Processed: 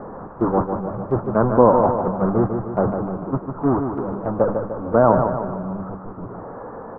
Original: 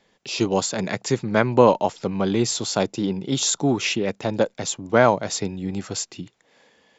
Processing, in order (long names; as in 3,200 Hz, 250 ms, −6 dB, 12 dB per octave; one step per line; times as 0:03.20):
linear delta modulator 32 kbit/s, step −14 dBFS
Butterworth low-pass 1,300 Hz 48 dB per octave
noise gate −20 dBFS, range −13 dB
on a send: repeating echo 150 ms, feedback 53%, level −6.5 dB
on the sum: level +1.5 dB